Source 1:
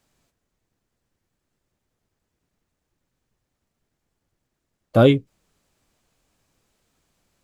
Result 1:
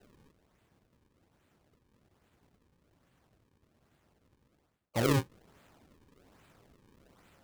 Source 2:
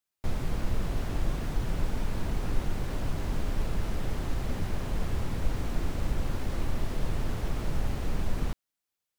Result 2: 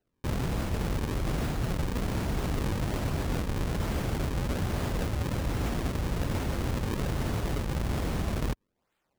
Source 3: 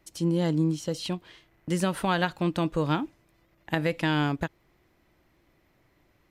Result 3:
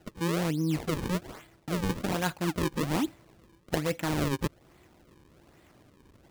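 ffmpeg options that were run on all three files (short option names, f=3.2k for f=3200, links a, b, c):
-af "highpass=52,areverse,acompressor=threshold=-33dB:ratio=16,areverse,acrusher=samples=37:mix=1:aa=0.000001:lfo=1:lforange=59.2:lforate=1.2,volume=8dB"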